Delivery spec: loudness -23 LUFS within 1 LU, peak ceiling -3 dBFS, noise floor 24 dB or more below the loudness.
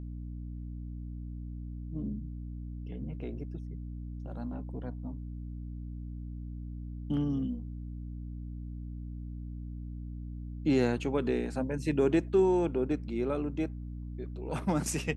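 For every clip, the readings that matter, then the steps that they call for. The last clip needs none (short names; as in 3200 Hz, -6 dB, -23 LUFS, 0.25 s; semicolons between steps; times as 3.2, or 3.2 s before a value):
hum 60 Hz; harmonics up to 300 Hz; hum level -37 dBFS; loudness -34.5 LUFS; peak -15.5 dBFS; loudness target -23.0 LUFS
-> de-hum 60 Hz, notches 5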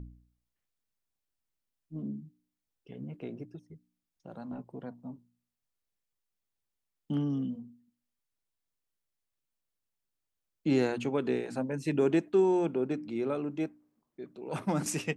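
hum none; loudness -32.0 LUFS; peak -15.5 dBFS; loudness target -23.0 LUFS
-> gain +9 dB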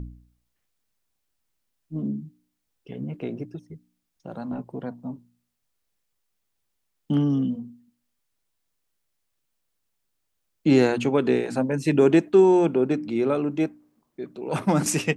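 loudness -23.0 LUFS; peak -6.5 dBFS; noise floor -77 dBFS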